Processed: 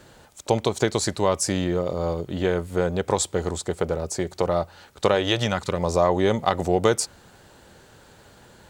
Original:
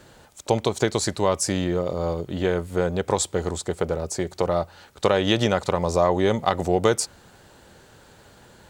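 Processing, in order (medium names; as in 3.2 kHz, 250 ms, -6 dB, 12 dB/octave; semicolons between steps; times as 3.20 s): 5.14–5.79 s: peaking EQ 120 Hz -> 1 kHz -13.5 dB 0.62 oct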